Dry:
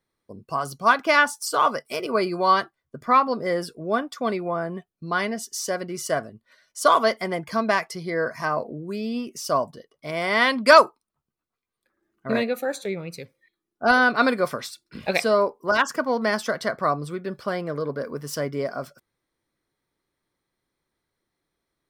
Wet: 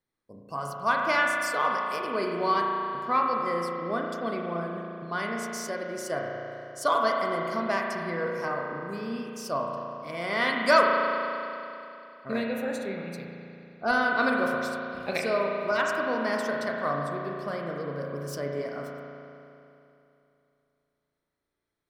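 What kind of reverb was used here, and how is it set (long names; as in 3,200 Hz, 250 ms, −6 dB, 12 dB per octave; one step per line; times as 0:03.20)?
spring reverb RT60 2.9 s, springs 35 ms, chirp 65 ms, DRR −0.5 dB
level −8 dB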